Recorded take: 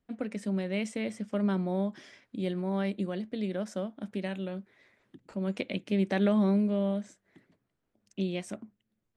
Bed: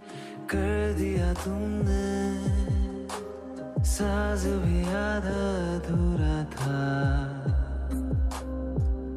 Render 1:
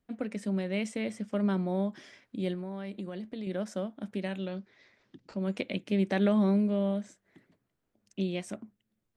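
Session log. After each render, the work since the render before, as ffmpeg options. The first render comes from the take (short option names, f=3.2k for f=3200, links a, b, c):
-filter_complex "[0:a]asettb=1/sr,asplit=3[a][b][c];[a]atrim=end=2.544[d];[b]atrim=start=2.54:end=3.47,asetpts=PTS-STARTPTS,afade=t=in:d=0.004:c=qsin,afade=t=out:st=0.926:d=0.004:c=qsin,acompressor=threshold=-34dB:ratio=6:attack=3.2:release=140:knee=1:detection=peak[e];[c]atrim=start=3.466[f];[d][e]acrossfade=d=0.004:c1=hsin:c2=qsin[g];[g][f]acrossfade=d=0.004:c1=qsin:c2=hsin,asettb=1/sr,asplit=3[h][i][j];[h]atrim=end=4.374[k];[i]atrim=start=4.37:end=5.37,asetpts=PTS-STARTPTS,afade=t=in:d=0.004:c=qsin,afade=t=out:st=0.996:d=0.004:c=qsin,lowpass=f=5.3k:t=q:w=2.5[l];[j]atrim=start=5.366[m];[k][l]acrossfade=d=0.004:c1=hsin:c2=qsin[n];[n][m]acrossfade=d=0.004:c1=qsin:c2=hsin"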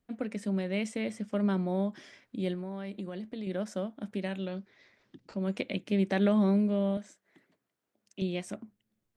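-filter_complex "[0:a]asettb=1/sr,asplit=3[a][b][c];[a]atrim=end=6.974[d];[b]atrim=start=6.97:end=8.22,asetpts=PTS-STARTPTS,afade=t=in:d=0.004:c=qsin,afade=t=out:st=1.246:d=0.004:c=qsin,highpass=f=390:p=1[e];[c]atrim=start=8.216[f];[d][e]acrossfade=d=0.004:c1=hsin:c2=qsin[g];[g][f]acrossfade=d=0.004:c1=qsin:c2=hsin"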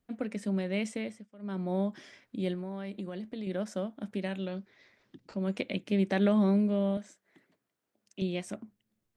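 -filter_complex "[0:a]asplit=3[a][b][c];[a]atrim=end=1.28,asetpts=PTS-STARTPTS,afade=t=out:st=0.92:d=0.36:silence=0.0749894[d];[b]atrim=start=1.28:end=1.38,asetpts=PTS-STARTPTS,volume=-22.5dB[e];[c]atrim=start=1.38,asetpts=PTS-STARTPTS,afade=t=in:d=0.36:silence=0.0749894[f];[d][e][f]concat=n=3:v=0:a=1"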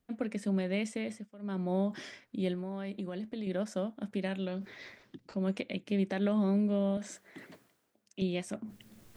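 -af "areverse,acompressor=mode=upward:threshold=-36dB:ratio=2.5,areverse,alimiter=limit=-21dB:level=0:latency=1:release=416"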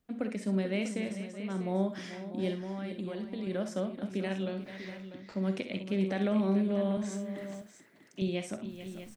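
-filter_complex "[0:a]asplit=2[a][b];[b]adelay=47,volume=-13dB[c];[a][c]amix=inputs=2:normalize=0,aecho=1:1:60|68|439|644:0.211|0.251|0.251|0.251"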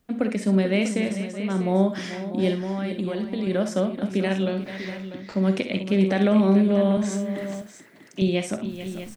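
-af "volume=10dB"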